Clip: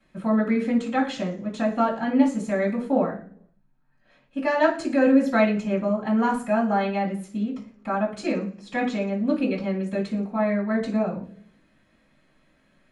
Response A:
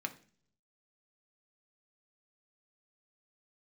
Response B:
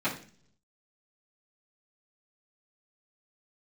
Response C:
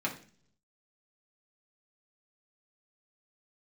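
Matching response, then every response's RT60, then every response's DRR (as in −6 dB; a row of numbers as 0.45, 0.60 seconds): B; 0.45, 0.45, 0.45 seconds; 5.0, −12.5, −3.0 decibels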